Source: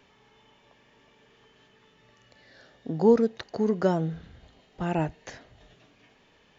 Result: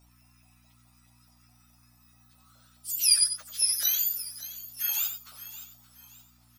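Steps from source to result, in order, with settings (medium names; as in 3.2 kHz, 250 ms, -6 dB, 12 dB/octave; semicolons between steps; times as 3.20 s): spectrum inverted on a logarithmic axis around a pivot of 1.5 kHz; differentiator; LFO high-pass saw up 4.7 Hz 610–1600 Hz; hum 60 Hz, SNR 28 dB; delay 92 ms -9 dB; modulated delay 573 ms, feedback 36%, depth 64 cents, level -14 dB; trim +3.5 dB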